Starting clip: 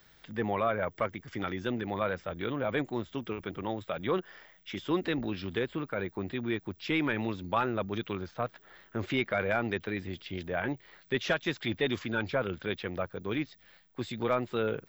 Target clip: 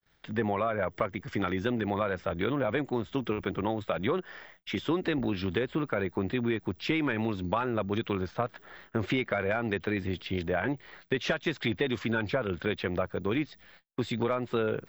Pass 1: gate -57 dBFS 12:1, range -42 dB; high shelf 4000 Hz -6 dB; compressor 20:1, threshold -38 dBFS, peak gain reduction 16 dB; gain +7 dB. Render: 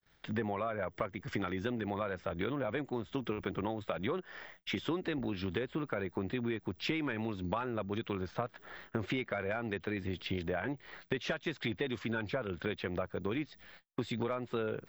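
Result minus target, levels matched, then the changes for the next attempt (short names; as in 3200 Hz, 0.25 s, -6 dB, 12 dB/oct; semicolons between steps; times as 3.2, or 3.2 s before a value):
compressor: peak gain reduction +6.5 dB
change: compressor 20:1, threshold -31 dBFS, peak gain reduction 9 dB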